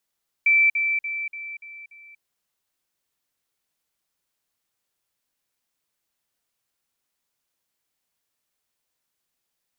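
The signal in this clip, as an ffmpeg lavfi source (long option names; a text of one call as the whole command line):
ffmpeg -f lavfi -i "aevalsrc='pow(10,(-14-6*floor(t/0.29))/20)*sin(2*PI*2330*t)*clip(min(mod(t,0.29),0.24-mod(t,0.29))/0.005,0,1)':duration=1.74:sample_rate=44100" out.wav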